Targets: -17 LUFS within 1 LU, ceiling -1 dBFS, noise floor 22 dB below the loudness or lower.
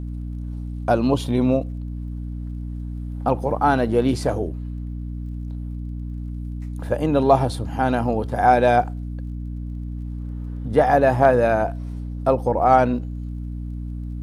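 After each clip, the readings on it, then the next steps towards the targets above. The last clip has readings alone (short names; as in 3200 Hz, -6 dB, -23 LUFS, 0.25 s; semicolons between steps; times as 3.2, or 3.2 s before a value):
ticks 24/s; hum 60 Hz; harmonics up to 300 Hz; hum level -27 dBFS; loudness -22.5 LUFS; peak -3.0 dBFS; loudness target -17.0 LUFS
-> de-click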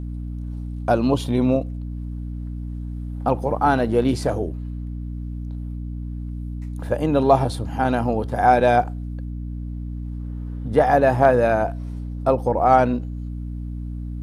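ticks 0/s; hum 60 Hz; harmonics up to 300 Hz; hum level -27 dBFS
-> notches 60/120/180/240/300 Hz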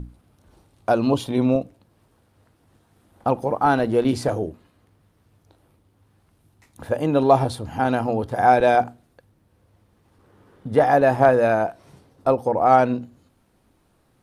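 hum none; loudness -20.5 LUFS; peak -3.0 dBFS; loudness target -17.0 LUFS
-> gain +3.5 dB; limiter -1 dBFS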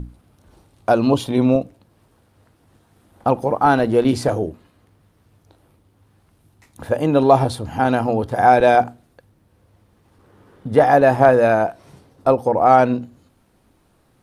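loudness -17.0 LUFS; peak -1.0 dBFS; noise floor -60 dBFS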